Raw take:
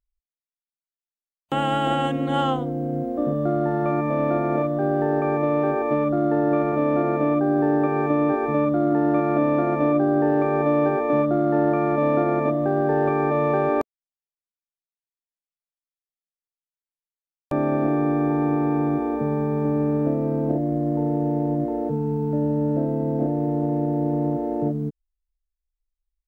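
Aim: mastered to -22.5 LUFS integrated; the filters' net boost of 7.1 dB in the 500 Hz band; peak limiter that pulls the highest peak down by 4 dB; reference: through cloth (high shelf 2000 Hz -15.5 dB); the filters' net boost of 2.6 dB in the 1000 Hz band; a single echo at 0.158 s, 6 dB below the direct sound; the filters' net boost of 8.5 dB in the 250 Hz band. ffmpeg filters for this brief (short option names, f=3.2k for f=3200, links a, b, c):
-af "equalizer=f=250:t=o:g=8.5,equalizer=f=500:t=o:g=7,equalizer=f=1k:t=o:g=3.5,alimiter=limit=-6dB:level=0:latency=1,highshelf=f=2k:g=-15.5,aecho=1:1:158:0.501,volume=-6.5dB"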